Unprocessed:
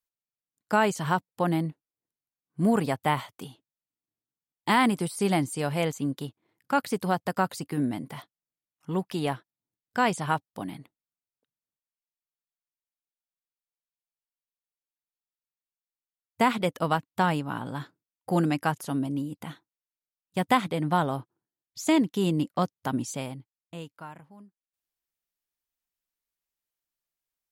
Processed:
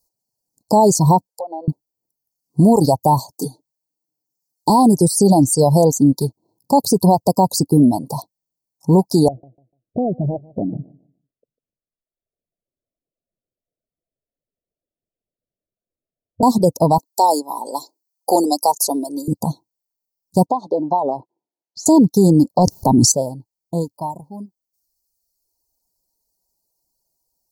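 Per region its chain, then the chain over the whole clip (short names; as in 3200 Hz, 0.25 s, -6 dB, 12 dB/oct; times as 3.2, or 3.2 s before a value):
1.27–1.68 HPF 510 Hz 24 dB/oct + compressor 3:1, threshold -42 dBFS + treble ducked by the level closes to 1700 Hz, closed at -43 dBFS
3.3–4.7 HPF 210 Hz 6 dB/oct + comb 6.7 ms, depth 66%
9.28–16.43 steep low-pass 680 Hz 72 dB/oct + compressor 10:1, threshold -35 dBFS + feedback echo 0.148 s, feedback 24%, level -12.5 dB
16.98–19.28 HPF 340 Hz 24 dB/oct + tilt shelf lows -4.5 dB, about 1200 Hz
20.46–21.86 compressor 5:1, threshold -29 dBFS + BPF 360–2800 Hz
22.58–23.12 high shelf 8700 Hz -7 dB + transient shaper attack +9 dB, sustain 0 dB + sustainer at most 23 dB/s
whole clip: reverb removal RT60 1.2 s; Chebyshev band-stop 960–4300 Hz, order 5; maximiser +23.5 dB; gain -3.5 dB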